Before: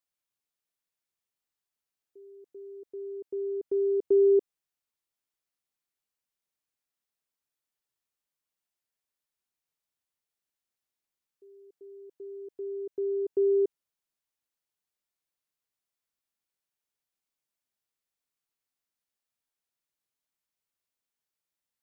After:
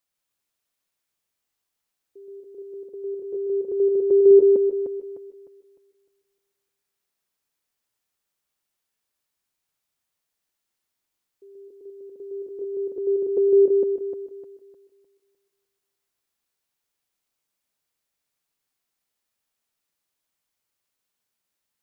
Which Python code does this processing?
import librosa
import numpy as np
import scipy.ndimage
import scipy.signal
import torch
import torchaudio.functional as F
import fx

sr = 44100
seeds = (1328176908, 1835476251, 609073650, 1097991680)

y = fx.reverse_delay_fb(x, sr, ms=152, feedback_pct=55, wet_db=-4.0)
y = fx.notch_comb(y, sr, f0_hz=310.0, at=(2.88, 4.31))
y = y * 10.0 ** (6.0 / 20.0)